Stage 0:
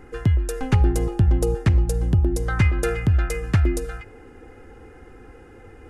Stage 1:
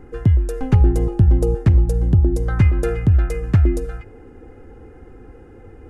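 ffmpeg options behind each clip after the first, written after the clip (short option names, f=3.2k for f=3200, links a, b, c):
-af "tiltshelf=f=910:g=5.5,volume=-1dB"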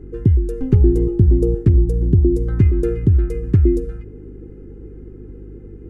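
-af "lowshelf=f=510:t=q:w=3:g=9.5,aeval=exprs='val(0)+0.0447*(sin(2*PI*50*n/s)+sin(2*PI*2*50*n/s)/2+sin(2*PI*3*50*n/s)/3+sin(2*PI*4*50*n/s)/4+sin(2*PI*5*50*n/s)/5)':c=same,volume=-9.5dB"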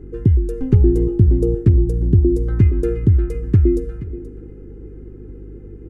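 -af "aecho=1:1:478:0.158"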